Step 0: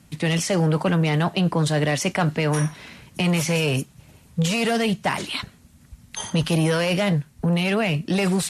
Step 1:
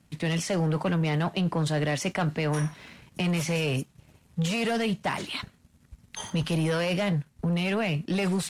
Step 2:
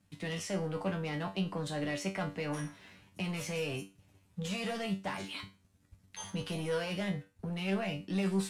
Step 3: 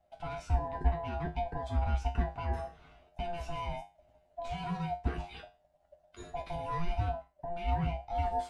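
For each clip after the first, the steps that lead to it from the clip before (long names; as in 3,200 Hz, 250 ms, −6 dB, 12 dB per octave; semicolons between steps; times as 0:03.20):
high-shelf EQ 5,800 Hz −5 dB; leveller curve on the samples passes 1; level −8 dB
tuned comb filter 97 Hz, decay 0.27 s, harmonics all, mix 90%
neighbouring bands swapped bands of 500 Hz; RIAA equalisation playback; level −3.5 dB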